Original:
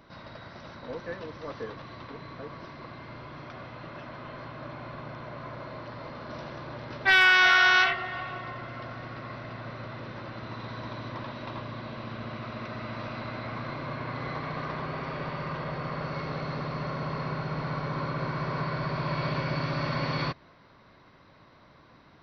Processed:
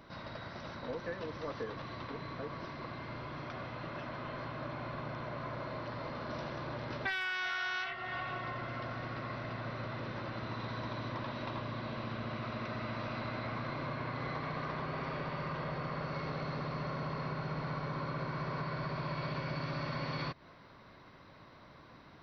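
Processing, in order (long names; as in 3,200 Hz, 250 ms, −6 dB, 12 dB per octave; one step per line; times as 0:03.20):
downward compressor 5 to 1, threshold −35 dBFS, peak gain reduction 17.5 dB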